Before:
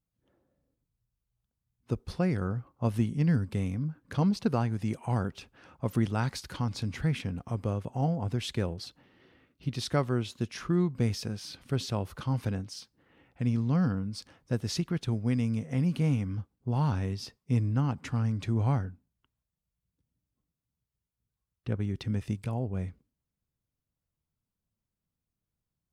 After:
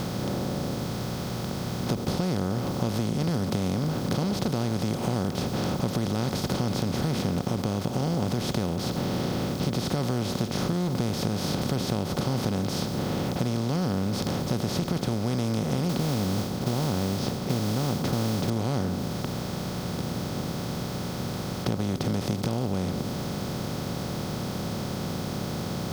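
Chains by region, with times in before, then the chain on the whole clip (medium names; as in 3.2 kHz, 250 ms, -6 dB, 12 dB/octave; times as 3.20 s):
15.89–18.50 s: distance through air 130 m + modulation noise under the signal 17 dB
whole clip: spectral levelling over time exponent 0.2; dynamic bell 1.6 kHz, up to -5 dB, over -39 dBFS, Q 0.76; compression, threshold -23 dBFS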